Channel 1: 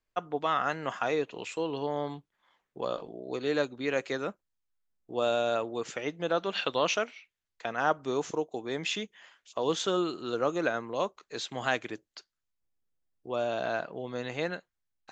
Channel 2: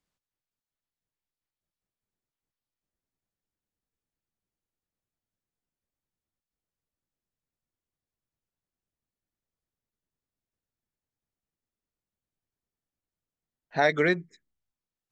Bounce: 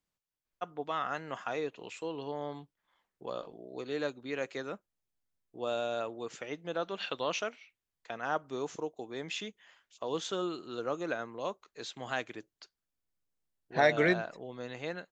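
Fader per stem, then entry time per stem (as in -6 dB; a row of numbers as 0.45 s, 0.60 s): -6.0 dB, -3.0 dB; 0.45 s, 0.00 s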